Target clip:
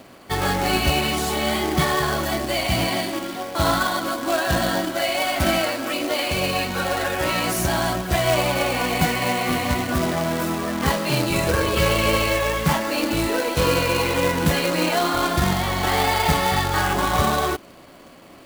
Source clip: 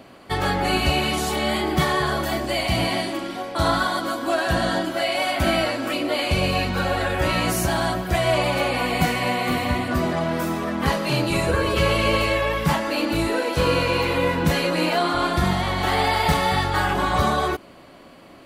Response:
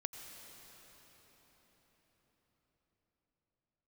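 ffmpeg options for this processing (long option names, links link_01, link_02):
-filter_complex "[0:a]asettb=1/sr,asplit=3[link_01][link_02][link_03];[link_01]atrim=end=5.584[link_04];[link_02]atrim=start=5.58:end=7.59,asetpts=PTS-STARTPTS,afade=type=in:duration=0.004:curve=qsin,afade=type=out:start_time=2.006:duration=0.004:curve=qsin,lowshelf=frequency=130:gain=-10.5[link_05];[link_03]atrim=start=7.586[link_06];[link_04][link_05]acrossfade=duration=0.004:curve1=hsin:curve2=qsin[link_07];[link_07][link_06]acrossfade=duration=0.004:curve1=qsin:curve2=hsin,acrusher=bits=2:mode=log:mix=0:aa=0.000001"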